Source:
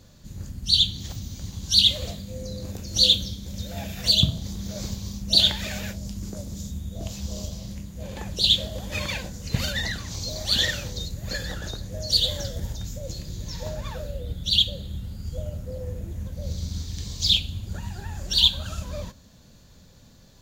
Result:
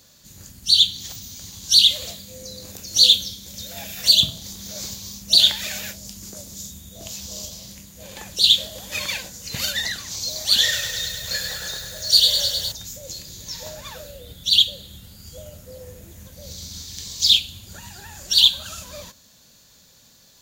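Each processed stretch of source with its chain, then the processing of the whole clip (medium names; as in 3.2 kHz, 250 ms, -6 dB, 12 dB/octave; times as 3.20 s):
10.62–12.72 s: peaking EQ 260 Hz -9.5 dB 0.73 oct + doubling 28 ms -6 dB + bit-crushed delay 103 ms, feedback 80%, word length 8-bit, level -7 dB
whole clip: tilt EQ +3 dB/octave; loudness maximiser +1 dB; trim -1.5 dB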